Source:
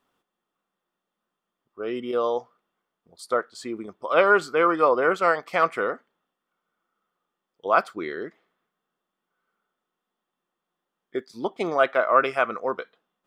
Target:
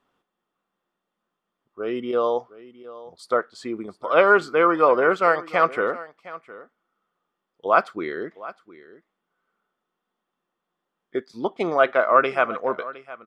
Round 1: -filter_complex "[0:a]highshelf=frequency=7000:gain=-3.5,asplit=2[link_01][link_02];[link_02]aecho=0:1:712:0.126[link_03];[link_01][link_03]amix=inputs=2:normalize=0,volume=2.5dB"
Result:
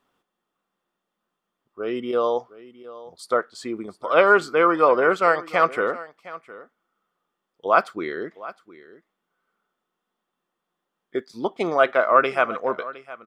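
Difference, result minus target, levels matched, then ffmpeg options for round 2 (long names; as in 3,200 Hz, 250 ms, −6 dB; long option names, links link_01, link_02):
8,000 Hz band +5.0 dB
-filter_complex "[0:a]highshelf=frequency=7000:gain=-13,asplit=2[link_01][link_02];[link_02]aecho=0:1:712:0.126[link_03];[link_01][link_03]amix=inputs=2:normalize=0,volume=2.5dB"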